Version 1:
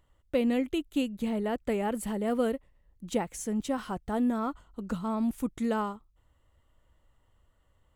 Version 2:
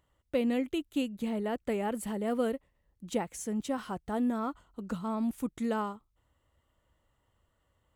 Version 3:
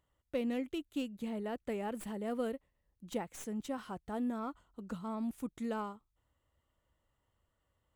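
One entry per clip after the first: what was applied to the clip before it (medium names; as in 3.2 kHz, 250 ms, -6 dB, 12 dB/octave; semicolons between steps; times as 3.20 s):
high-pass 77 Hz 6 dB/octave; trim -2 dB
tracing distortion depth 0.042 ms; trim -6 dB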